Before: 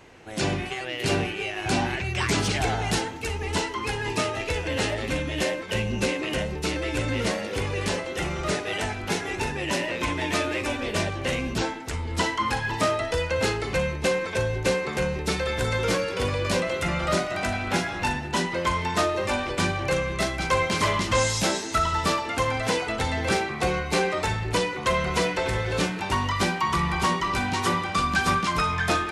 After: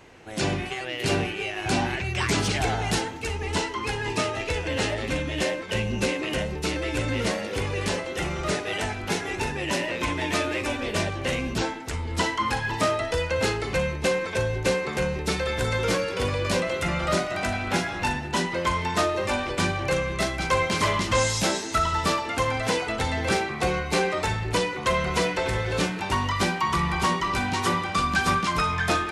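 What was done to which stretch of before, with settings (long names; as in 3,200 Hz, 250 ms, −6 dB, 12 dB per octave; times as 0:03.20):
0:03.20–0:05.83: low-pass filter 11,000 Hz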